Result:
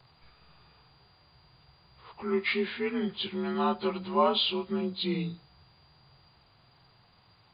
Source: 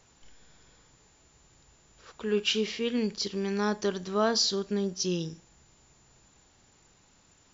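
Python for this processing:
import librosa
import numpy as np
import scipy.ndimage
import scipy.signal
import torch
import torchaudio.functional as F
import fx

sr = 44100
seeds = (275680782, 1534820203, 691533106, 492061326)

y = fx.partial_stretch(x, sr, pct=88)
y = fx.graphic_eq_10(y, sr, hz=(125, 250, 1000), db=(10, -5, 7))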